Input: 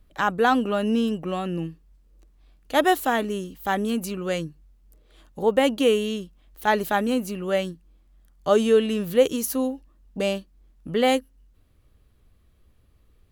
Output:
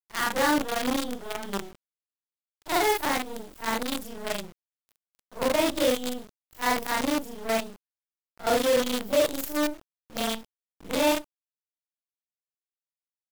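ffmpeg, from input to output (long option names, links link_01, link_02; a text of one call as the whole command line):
ffmpeg -i in.wav -af "afftfilt=real='re':imag='-im':win_size=4096:overlap=0.75,asetrate=50951,aresample=44100,atempo=0.865537,acrusher=bits=5:dc=4:mix=0:aa=0.000001" out.wav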